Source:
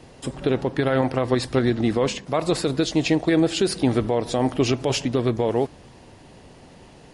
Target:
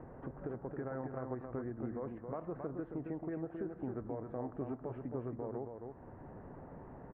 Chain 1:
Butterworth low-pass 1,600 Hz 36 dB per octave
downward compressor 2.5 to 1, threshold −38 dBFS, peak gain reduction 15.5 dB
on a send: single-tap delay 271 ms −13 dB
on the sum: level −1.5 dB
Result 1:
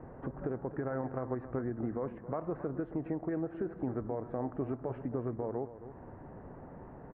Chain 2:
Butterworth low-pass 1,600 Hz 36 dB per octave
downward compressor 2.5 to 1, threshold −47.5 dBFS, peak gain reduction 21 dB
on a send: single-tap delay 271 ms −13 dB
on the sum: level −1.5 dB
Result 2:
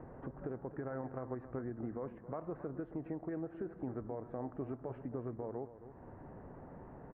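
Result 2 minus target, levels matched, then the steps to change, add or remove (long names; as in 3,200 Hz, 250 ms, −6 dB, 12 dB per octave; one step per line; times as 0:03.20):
echo-to-direct −7.5 dB
change: single-tap delay 271 ms −5.5 dB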